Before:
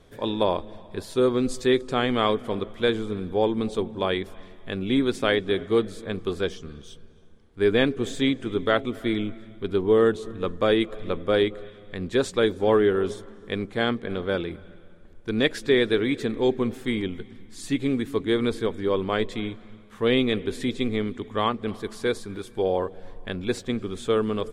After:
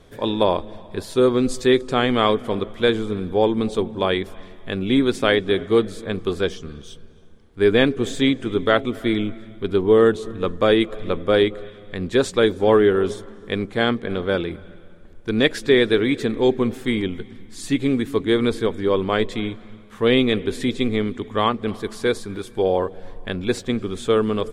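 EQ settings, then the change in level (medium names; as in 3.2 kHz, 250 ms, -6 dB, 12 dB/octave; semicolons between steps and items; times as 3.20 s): flat; +4.5 dB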